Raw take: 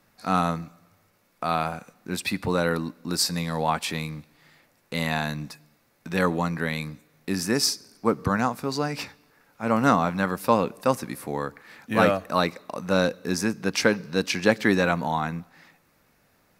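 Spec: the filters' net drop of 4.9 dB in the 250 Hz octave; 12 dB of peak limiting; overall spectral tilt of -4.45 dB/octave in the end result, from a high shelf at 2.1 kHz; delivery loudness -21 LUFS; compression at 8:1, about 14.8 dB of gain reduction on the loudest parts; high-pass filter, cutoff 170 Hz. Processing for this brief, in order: high-pass 170 Hz; peaking EQ 250 Hz -4.5 dB; treble shelf 2.1 kHz -7.5 dB; compression 8:1, threshold -32 dBFS; trim +21 dB; peak limiter -8.5 dBFS

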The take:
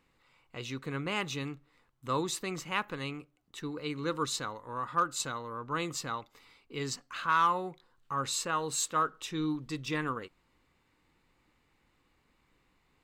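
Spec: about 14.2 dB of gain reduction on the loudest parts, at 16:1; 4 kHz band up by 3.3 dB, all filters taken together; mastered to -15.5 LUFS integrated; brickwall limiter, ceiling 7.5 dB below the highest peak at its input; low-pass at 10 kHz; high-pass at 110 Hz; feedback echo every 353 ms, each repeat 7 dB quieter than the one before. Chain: high-pass 110 Hz; low-pass 10 kHz; peaking EQ 4 kHz +4 dB; compression 16:1, threshold -35 dBFS; peak limiter -29.5 dBFS; feedback delay 353 ms, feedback 45%, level -7 dB; trim +25 dB

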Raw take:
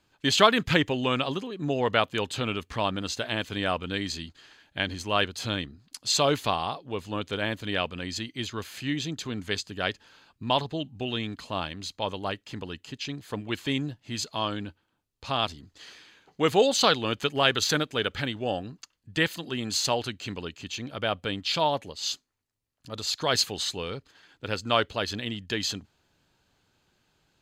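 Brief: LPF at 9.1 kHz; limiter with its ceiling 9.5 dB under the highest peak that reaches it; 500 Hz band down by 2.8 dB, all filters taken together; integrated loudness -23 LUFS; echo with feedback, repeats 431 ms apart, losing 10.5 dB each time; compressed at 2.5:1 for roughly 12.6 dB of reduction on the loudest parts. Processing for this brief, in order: low-pass 9.1 kHz; peaking EQ 500 Hz -3.5 dB; compression 2.5:1, threshold -34 dBFS; peak limiter -25 dBFS; feedback delay 431 ms, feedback 30%, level -10.5 dB; trim +14.5 dB

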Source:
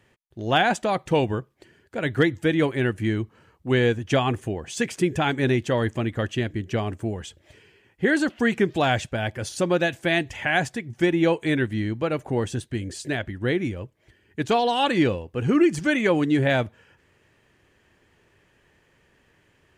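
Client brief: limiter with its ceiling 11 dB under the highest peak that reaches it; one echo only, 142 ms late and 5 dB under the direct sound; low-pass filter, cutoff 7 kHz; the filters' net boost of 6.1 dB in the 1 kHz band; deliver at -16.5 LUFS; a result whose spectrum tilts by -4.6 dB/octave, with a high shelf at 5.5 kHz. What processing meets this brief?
low-pass 7 kHz; peaking EQ 1 kHz +8.5 dB; treble shelf 5.5 kHz +6 dB; peak limiter -14 dBFS; delay 142 ms -5 dB; trim +8 dB

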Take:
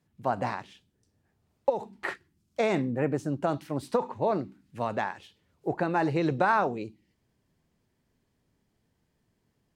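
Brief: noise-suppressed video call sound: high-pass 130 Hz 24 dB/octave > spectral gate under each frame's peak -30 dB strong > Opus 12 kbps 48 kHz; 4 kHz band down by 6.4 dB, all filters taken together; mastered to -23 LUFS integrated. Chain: high-pass 130 Hz 24 dB/octave; peaking EQ 4 kHz -8 dB; spectral gate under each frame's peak -30 dB strong; trim +7.5 dB; Opus 12 kbps 48 kHz

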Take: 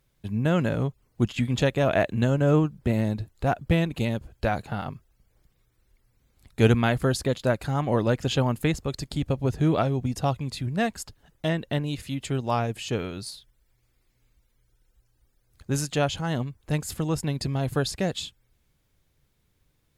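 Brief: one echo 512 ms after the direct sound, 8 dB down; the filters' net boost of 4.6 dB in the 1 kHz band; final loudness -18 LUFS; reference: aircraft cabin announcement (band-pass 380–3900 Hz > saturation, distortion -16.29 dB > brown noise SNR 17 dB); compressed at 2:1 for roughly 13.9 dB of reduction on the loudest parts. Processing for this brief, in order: peaking EQ 1 kHz +7 dB; compression 2:1, threshold -39 dBFS; band-pass 380–3900 Hz; delay 512 ms -8 dB; saturation -26.5 dBFS; brown noise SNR 17 dB; trim +22.5 dB

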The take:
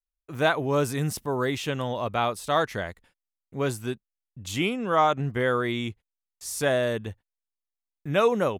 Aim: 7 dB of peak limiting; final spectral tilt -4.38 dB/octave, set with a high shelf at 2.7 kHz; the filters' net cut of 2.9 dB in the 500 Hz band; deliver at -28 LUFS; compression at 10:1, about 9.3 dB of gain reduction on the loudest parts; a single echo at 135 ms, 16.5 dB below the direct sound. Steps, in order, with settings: peaking EQ 500 Hz -4 dB; treble shelf 2.7 kHz +8.5 dB; compression 10:1, threshold -26 dBFS; peak limiter -22.5 dBFS; delay 135 ms -16.5 dB; trim +5.5 dB

